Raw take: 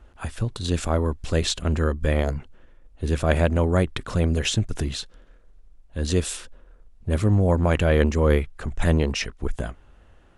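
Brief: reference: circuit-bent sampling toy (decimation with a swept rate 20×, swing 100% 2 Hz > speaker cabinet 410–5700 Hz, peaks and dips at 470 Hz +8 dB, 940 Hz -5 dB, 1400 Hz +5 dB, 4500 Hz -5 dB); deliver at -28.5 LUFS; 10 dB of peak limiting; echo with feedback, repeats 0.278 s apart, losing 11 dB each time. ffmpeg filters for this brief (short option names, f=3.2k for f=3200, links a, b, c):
-af "alimiter=limit=-14.5dB:level=0:latency=1,aecho=1:1:278|556|834:0.282|0.0789|0.0221,acrusher=samples=20:mix=1:aa=0.000001:lfo=1:lforange=20:lforate=2,highpass=410,equalizer=f=470:t=q:w=4:g=8,equalizer=f=940:t=q:w=4:g=-5,equalizer=f=1.4k:t=q:w=4:g=5,equalizer=f=4.5k:t=q:w=4:g=-5,lowpass=f=5.7k:w=0.5412,lowpass=f=5.7k:w=1.3066,volume=1.5dB"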